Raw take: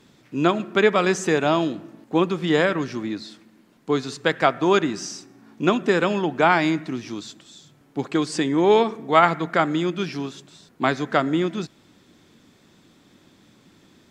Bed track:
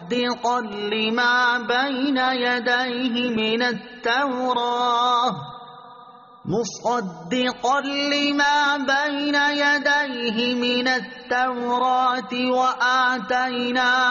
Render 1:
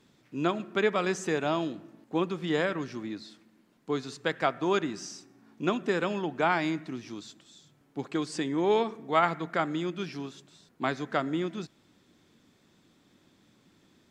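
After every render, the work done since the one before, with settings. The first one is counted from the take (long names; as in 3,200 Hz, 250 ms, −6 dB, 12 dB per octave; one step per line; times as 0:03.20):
level −8.5 dB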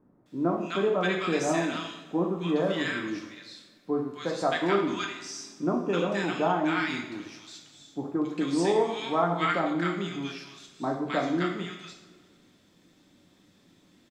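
multiband delay without the direct sound lows, highs 260 ms, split 1,200 Hz
coupled-rooms reverb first 0.63 s, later 2 s, from −16 dB, DRR 0.5 dB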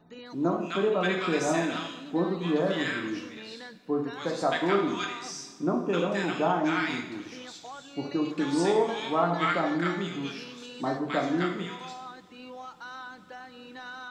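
mix in bed track −23 dB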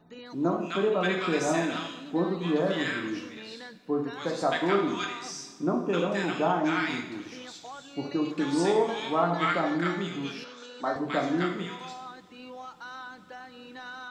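0:10.44–0:10.96: loudspeaker in its box 320–7,000 Hz, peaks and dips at 350 Hz −8 dB, 560 Hz +5 dB, 1,400 Hz +9 dB, 2,700 Hz −7 dB, 4,800 Hz −4 dB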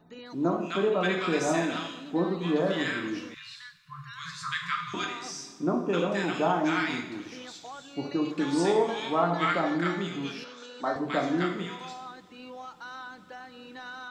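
0:03.34–0:04.94: linear-phase brick-wall band-stop 160–1,000 Hz
0:06.34–0:06.83: high-shelf EQ 6,900 Hz +6.5 dB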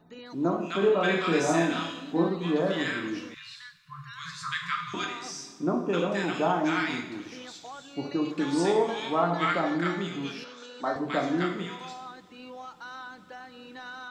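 0:00.79–0:02.29: double-tracking delay 30 ms −3.5 dB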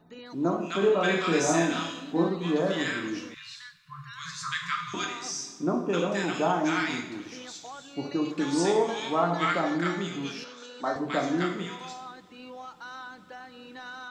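dynamic equaliser 6,400 Hz, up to +7 dB, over −57 dBFS, Q 2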